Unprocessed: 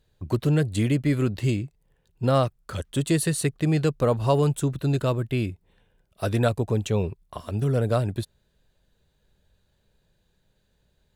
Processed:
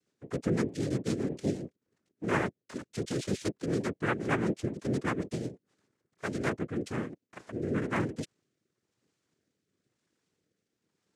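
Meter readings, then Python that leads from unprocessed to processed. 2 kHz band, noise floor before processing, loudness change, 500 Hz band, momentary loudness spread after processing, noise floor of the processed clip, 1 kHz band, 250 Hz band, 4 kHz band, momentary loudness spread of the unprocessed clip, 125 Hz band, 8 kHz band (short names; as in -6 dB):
-0.5 dB, -69 dBFS, -8.5 dB, -8.5 dB, 11 LU, -85 dBFS, -6.5 dB, -6.0 dB, -9.0 dB, 10 LU, -13.0 dB, -11.0 dB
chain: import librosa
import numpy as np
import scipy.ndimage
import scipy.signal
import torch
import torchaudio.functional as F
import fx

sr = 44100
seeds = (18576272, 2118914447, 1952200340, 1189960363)

y = fx.fixed_phaser(x, sr, hz=1800.0, stages=8)
y = fx.noise_vocoder(y, sr, seeds[0], bands=3)
y = fx.rotary_switch(y, sr, hz=8.0, then_hz=1.0, switch_at_s=5.87)
y = y * librosa.db_to_amplitude(-3.5)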